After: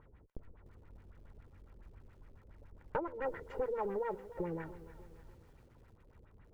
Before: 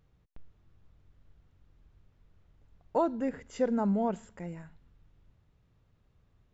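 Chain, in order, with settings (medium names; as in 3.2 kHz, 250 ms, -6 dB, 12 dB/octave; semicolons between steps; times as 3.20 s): comb filter that takes the minimum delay 2.1 ms; LFO low-pass sine 7.2 Hz 390–2200 Hz; compression 8:1, threshold -41 dBFS, peak gain reduction 19 dB; bit-crushed delay 296 ms, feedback 55%, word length 11-bit, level -15 dB; trim +6.5 dB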